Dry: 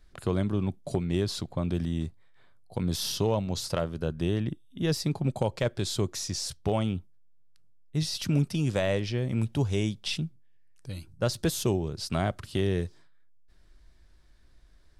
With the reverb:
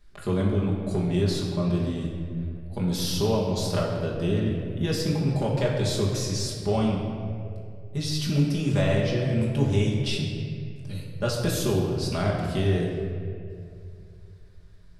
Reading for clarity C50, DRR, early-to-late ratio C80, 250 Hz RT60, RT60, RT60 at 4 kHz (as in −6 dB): 2.0 dB, −4.5 dB, 3.5 dB, 2.7 s, 2.4 s, 1.4 s